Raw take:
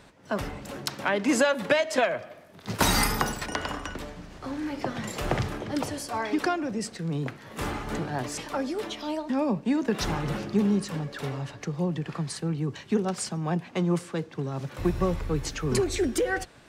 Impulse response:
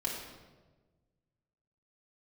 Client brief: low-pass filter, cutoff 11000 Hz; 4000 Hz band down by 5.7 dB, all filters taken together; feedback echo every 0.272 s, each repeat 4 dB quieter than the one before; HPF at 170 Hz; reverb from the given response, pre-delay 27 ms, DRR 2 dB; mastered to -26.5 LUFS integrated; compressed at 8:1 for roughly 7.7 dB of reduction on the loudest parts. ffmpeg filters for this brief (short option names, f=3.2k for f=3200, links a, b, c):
-filter_complex "[0:a]highpass=170,lowpass=11k,equalizer=f=4k:t=o:g=-7.5,acompressor=threshold=-27dB:ratio=8,aecho=1:1:272|544|816|1088|1360|1632|1904|2176|2448:0.631|0.398|0.25|0.158|0.0994|0.0626|0.0394|0.0249|0.0157,asplit=2[a][b];[1:a]atrim=start_sample=2205,adelay=27[c];[b][c]afir=irnorm=-1:irlink=0,volume=-6dB[d];[a][d]amix=inputs=2:normalize=0,volume=3dB"